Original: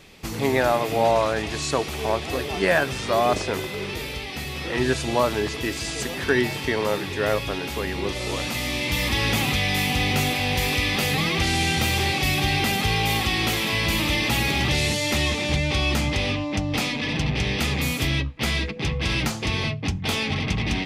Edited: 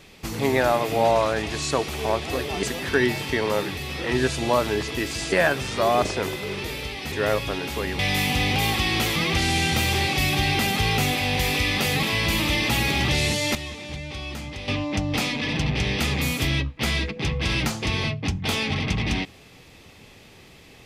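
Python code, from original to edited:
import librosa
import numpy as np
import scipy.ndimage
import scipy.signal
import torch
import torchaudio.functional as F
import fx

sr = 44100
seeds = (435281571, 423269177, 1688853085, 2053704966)

y = fx.edit(x, sr, fx.swap(start_s=2.63, length_s=1.8, other_s=5.98, other_length_s=1.14),
    fx.cut(start_s=7.99, length_s=1.6),
    fx.swap(start_s=10.16, length_s=1.05, other_s=13.03, other_length_s=0.6),
    fx.clip_gain(start_s=15.15, length_s=1.13, db=-11.0), tone=tone)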